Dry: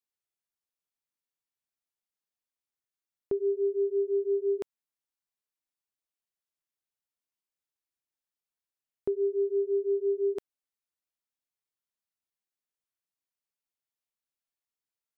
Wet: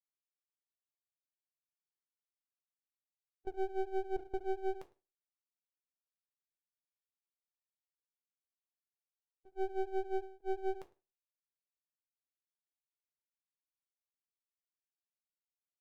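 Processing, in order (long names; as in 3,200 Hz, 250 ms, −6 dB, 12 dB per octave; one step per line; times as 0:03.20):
spectral dynamics exaggerated over time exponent 3
wrong playback speed 25 fps video run at 24 fps
gate pattern "xxxxxxxx.." 173 BPM −24 dB
single-tap delay 106 ms −22.5 dB
on a send at −5 dB: convolution reverb RT60 0.25 s, pre-delay 4 ms
on the sum: half-wave rectification
level −4 dB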